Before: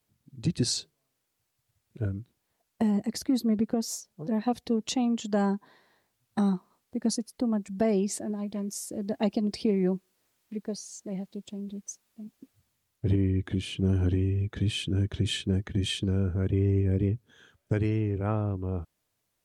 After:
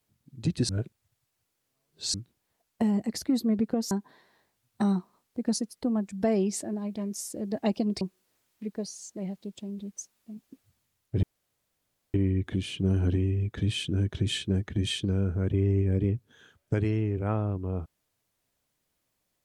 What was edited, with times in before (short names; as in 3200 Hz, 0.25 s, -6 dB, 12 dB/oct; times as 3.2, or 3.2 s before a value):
0.69–2.14 reverse
3.91–5.48 cut
9.58–9.91 cut
13.13 insert room tone 0.91 s